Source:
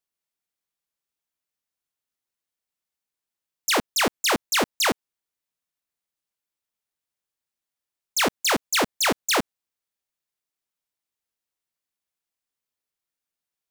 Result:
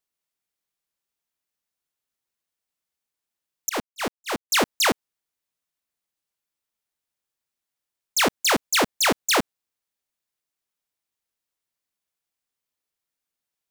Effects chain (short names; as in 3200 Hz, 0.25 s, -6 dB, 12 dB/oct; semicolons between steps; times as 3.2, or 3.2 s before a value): 3.69–4.5 gate -19 dBFS, range -37 dB; gain +1.5 dB